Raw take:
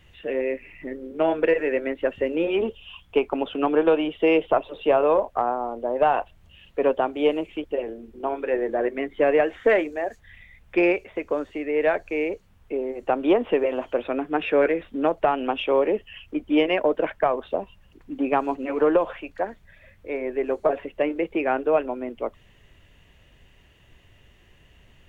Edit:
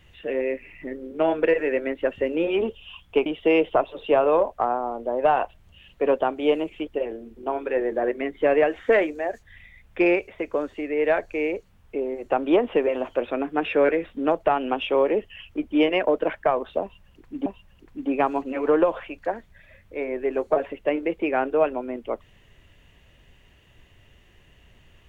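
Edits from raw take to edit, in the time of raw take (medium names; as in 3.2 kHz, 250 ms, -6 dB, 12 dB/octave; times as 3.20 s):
3.26–4.03 s: delete
17.59–18.23 s: loop, 2 plays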